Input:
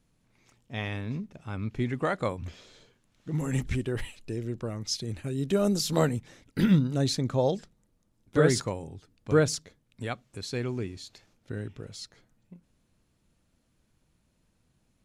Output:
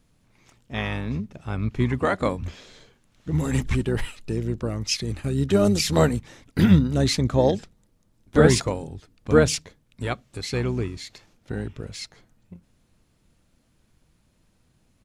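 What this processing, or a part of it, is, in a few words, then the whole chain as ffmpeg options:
octave pedal: -filter_complex "[0:a]asplit=2[s0][s1];[s1]asetrate=22050,aresample=44100,atempo=2,volume=0.398[s2];[s0][s2]amix=inputs=2:normalize=0,asettb=1/sr,asplit=3[s3][s4][s5];[s3]atrim=end=5.404[s6];[s4]atrim=start=5.4:end=6.05,asetpts=PTS-STARTPTS,afade=t=in:d=0.004:c=qsin,afade=t=out:st=0.646:d=0.004:c=qsin,lowpass=12000[s7];[s5]atrim=start=6.046[s8];[s6][s7]acrossfade=d=0.004:c1=hsin:c2=qsin[s9];[s9][s8]acrossfade=d=0.004:c1=qsin:c2=hsin,volume=1.88"

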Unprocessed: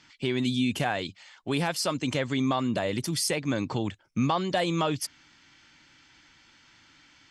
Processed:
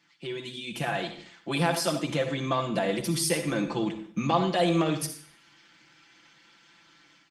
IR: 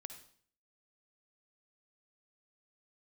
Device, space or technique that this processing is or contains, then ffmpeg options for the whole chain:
far-field microphone of a smart speaker: -filter_complex "[0:a]asettb=1/sr,asplit=3[s0][s1][s2];[s0]atrim=end=0.584[s3];[s1]atrim=start=0.58:end=1.02,asetpts=PTS-STARTPTS,afade=t=in:d=0.004:c=qsin,afade=t=out:st=0.436:d=0.004:c=qsin,asubboost=boost=8:cutoff=140[s4];[s2]atrim=start=1.016[s5];[s3][s4]acrossfade=d=0.004:c1=hsin:c2=qsin[s6];[s6][s5]acrossfade=d=0.004:c1=qsin:c2=hsin,asplit=3[s7][s8][s9];[s7]afade=t=out:st=3.48:d=0.02[s10];[s8]bandreject=f=50:t=h:w=6,bandreject=f=100:t=h:w=6,bandreject=f=150:t=h:w=6,afade=t=in:st=3.48:d=0.02,afade=t=out:st=4.59:d=0.02[s11];[s9]afade=t=in:st=4.59:d=0.02[s12];[s10][s11][s12]amix=inputs=3:normalize=0,aecho=1:1:5.9:0.88,asettb=1/sr,asplit=3[s13][s14][s15];[s13]atrim=end=1.914[s16];[s14]atrim=start=1.91:end=2.47,asetpts=PTS-STARTPTS,afade=t=in:d=0.004:c=qsin,afade=t=out:st=0.556:d=0.004:c=qsin,equalizer=f=3400:w=0.33:g=-2.5[s17];[s15]atrim=start=2.466[s18];[s16][s17]acrossfade=d=0.004:c1=hsin:c2=qsin[s19];[s19][s18]acrossfade=d=0.004:c1=qsin:c2=hsin[s20];[1:a]atrim=start_sample=2205[s21];[s20][s21]afir=irnorm=-1:irlink=0,highpass=f=150:w=0.5412,highpass=f=150:w=1.3066,dynaudnorm=f=550:g=3:m=2.51,volume=0.668" -ar 48000 -c:a libopus -b:a 32k

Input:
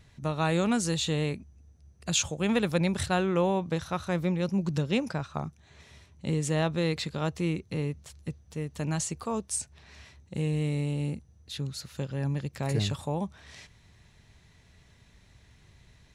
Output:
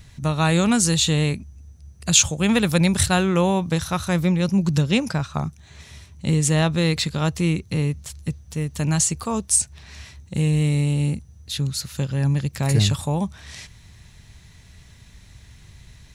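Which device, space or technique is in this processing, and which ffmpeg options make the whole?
smiley-face EQ: -filter_complex "[0:a]lowshelf=f=170:g=5.5,equalizer=f=450:t=o:w=1.7:g=-4,highshelf=f=5400:g=8.5,asettb=1/sr,asplit=3[s0][s1][s2];[s0]atrim=end=2.694[s3];[s1]atrim=start=2.69:end=4.2,asetpts=PTS-STARTPTS,afade=t=in:d=0.004:c=qsin,afade=t=out:st=1.506:d=0.004:c=qsin,highshelf=f=7900:g=5[s4];[s2]atrim=start=4.196[s5];[s3][s4]acrossfade=d=0.004:c1=hsin:c2=qsin[s6];[s6][s5]acrossfade=d=0.004:c1=qsin:c2=hsin,volume=2.37"

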